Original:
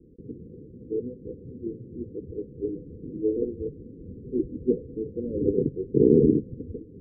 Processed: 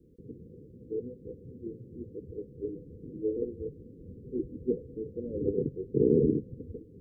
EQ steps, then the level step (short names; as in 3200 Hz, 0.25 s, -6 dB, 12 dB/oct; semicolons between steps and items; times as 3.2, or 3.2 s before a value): low shelf 96 Hz -12 dB; bell 310 Hz -10.5 dB 2.3 oct; +4.5 dB